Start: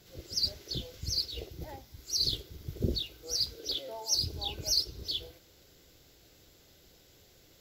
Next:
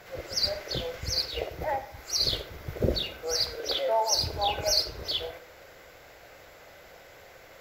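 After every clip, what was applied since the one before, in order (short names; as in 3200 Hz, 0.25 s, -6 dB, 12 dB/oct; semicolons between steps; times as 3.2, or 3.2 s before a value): band shelf 1100 Hz +15.5 dB 2.6 oct; reverb RT60 0.70 s, pre-delay 15 ms, DRR 13 dB; gain +2.5 dB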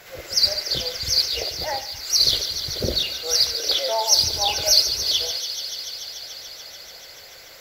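high shelf 2200 Hz +11 dB; on a send: thin delay 0.145 s, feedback 85%, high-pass 2900 Hz, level -9.5 dB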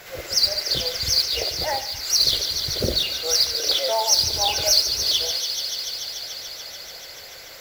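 compressor 1.5:1, threshold -25 dBFS, peak gain reduction 5.5 dB; modulation noise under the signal 19 dB; gain +3 dB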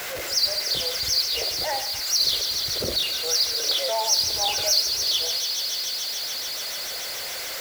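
zero-crossing step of -23 dBFS; low shelf 280 Hz -8 dB; gain -4.5 dB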